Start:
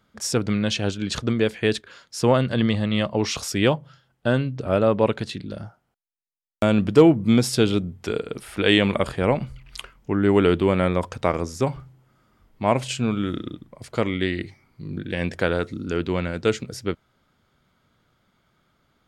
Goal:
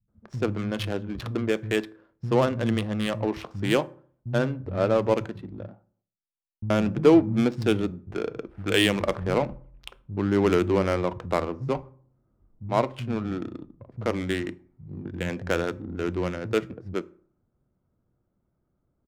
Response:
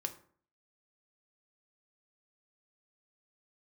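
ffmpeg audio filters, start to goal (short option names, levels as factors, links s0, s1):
-filter_complex "[0:a]acrossover=split=170[s0][s1];[s1]adelay=80[s2];[s0][s2]amix=inputs=2:normalize=0,adynamicsmooth=sensitivity=2:basefreq=520,asplit=2[s3][s4];[1:a]atrim=start_sample=2205[s5];[s4][s5]afir=irnorm=-1:irlink=0,volume=0.501[s6];[s3][s6]amix=inputs=2:normalize=0,volume=0.501"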